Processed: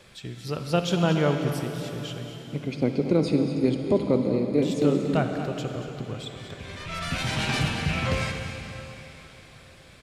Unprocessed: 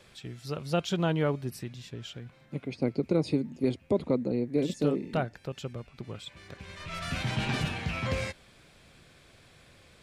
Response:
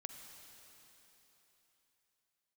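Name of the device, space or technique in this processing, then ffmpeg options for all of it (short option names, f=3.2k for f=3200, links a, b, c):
cave: -filter_complex "[0:a]asettb=1/sr,asplit=3[a][b][c];[a]atrim=end=7.184[d];[b]atrim=start=7.18:end=7.59,asetpts=PTS-STARTPTS,afade=t=in:d=0.004:c=qsin,afade=t=out:st=0.406:d=0.004:c=qsin,bass=f=250:g=-5,treble=f=4k:g=5[e];[c]atrim=start=7.586[f];[d][e]acrossfade=d=0.004:c1=hsin:c2=qsin[g];[g][f]acrossfade=d=0.004:c1=qsin:c2=hsin,aecho=1:1:234:0.266[h];[1:a]atrim=start_sample=2205[i];[h][i]afir=irnorm=-1:irlink=0,volume=9dB"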